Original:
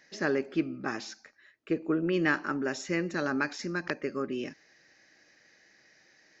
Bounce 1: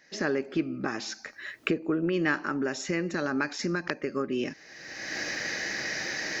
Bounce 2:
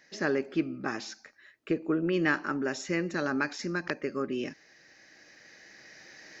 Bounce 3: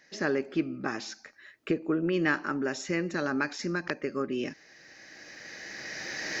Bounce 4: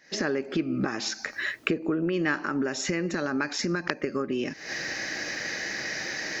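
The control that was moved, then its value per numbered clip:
recorder AGC, rising by: 34, 5.4, 13, 90 dB/s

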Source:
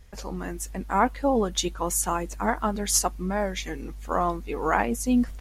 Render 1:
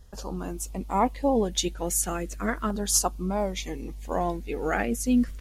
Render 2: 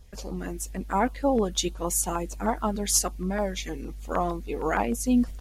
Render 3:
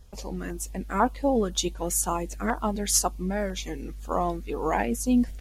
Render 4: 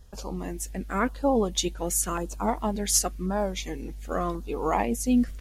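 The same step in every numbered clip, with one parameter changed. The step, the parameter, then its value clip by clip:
LFO notch, rate: 0.37, 6.5, 2, 0.92 Hz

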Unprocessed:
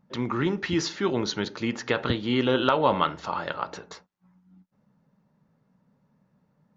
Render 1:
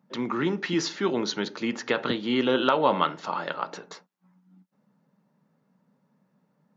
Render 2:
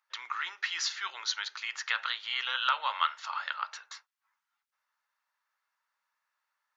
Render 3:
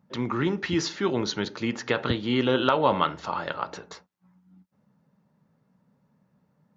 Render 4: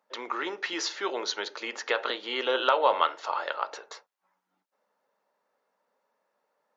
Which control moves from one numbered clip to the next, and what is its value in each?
HPF, cutoff: 160, 1200, 52, 460 Hz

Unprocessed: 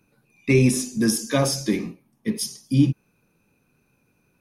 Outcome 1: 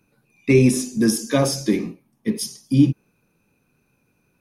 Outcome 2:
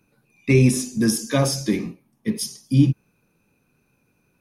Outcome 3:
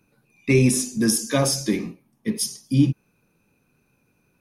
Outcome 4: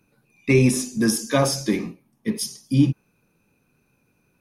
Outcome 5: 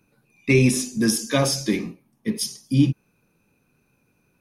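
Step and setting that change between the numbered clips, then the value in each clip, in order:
dynamic EQ, frequency: 350, 100, 9100, 990, 3100 Hz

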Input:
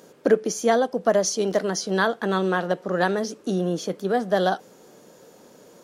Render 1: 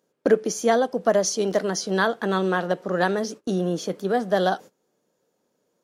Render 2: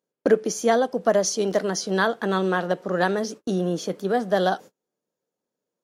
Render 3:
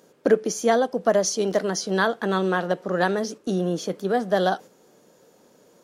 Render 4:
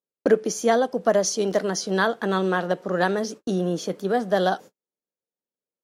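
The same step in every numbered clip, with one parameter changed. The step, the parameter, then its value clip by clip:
gate, range: -22, -35, -6, -48 dB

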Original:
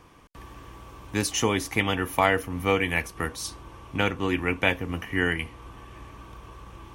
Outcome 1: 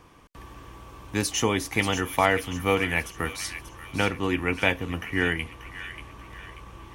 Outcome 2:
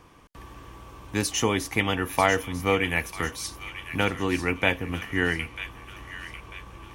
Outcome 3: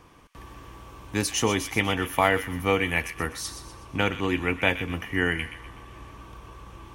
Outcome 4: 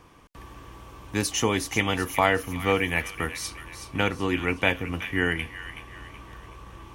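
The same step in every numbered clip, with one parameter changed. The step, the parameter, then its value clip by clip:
thin delay, time: 0.586, 0.945, 0.124, 0.374 s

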